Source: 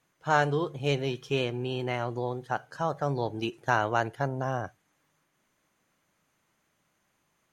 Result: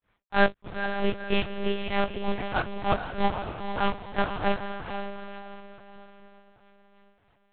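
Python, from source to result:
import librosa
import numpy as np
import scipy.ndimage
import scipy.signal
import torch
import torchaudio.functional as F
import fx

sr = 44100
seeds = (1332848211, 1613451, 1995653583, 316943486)

p1 = fx.block_float(x, sr, bits=3)
p2 = fx.rider(p1, sr, range_db=10, speed_s=2.0)
p3 = p1 + (p2 * 10.0 ** (-2.0 / 20.0))
p4 = fx.granulator(p3, sr, seeds[0], grain_ms=213.0, per_s=3.2, spray_ms=35.0, spread_st=0)
p5 = fx.chorus_voices(p4, sr, voices=6, hz=0.41, base_ms=23, depth_ms=2.6, mix_pct=50)
p6 = fx.echo_diffused(p5, sr, ms=484, feedback_pct=41, wet_db=-6.5)
p7 = fx.lpc_monotone(p6, sr, seeds[1], pitch_hz=200.0, order=8)
y = p7 * 10.0 ** (5.0 / 20.0)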